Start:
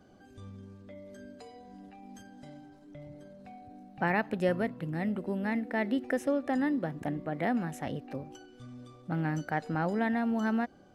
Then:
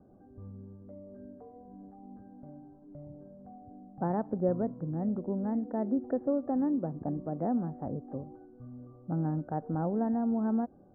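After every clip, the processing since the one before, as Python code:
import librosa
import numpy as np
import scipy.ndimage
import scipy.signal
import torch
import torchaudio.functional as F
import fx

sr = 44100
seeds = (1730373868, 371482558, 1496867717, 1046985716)

y = scipy.signal.sosfilt(scipy.signal.bessel(8, 690.0, 'lowpass', norm='mag', fs=sr, output='sos'), x)
y = y * librosa.db_to_amplitude(1.0)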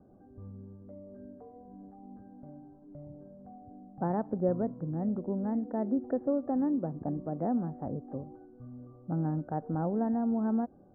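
y = x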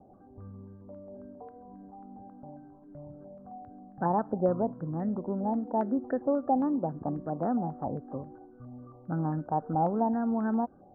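y = fx.filter_held_lowpass(x, sr, hz=7.4, low_hz=810.0, high_hz=1700.0)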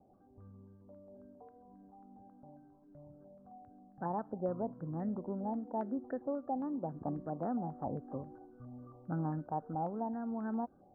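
y = fx.rider(x, sr, range_db=4, speed_s=0.5)
y = y * librosa.db_to_amplitude(-8.0)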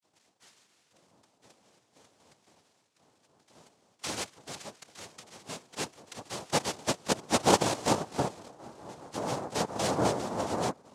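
y = fx.dispersion(x, sr, late='lows', ms=78.0, hz=640.0)
y = fx.filter_sweep_highpass(y, sr, from_hz=1300.0, to_hz=430.0, start_s=5.53, end_s=9.15, q=6.3)
y = fx.noise_vocoder(y, sr, seeds[0], bands=2)
y = y * librosa.db_to_amplitude(3.5)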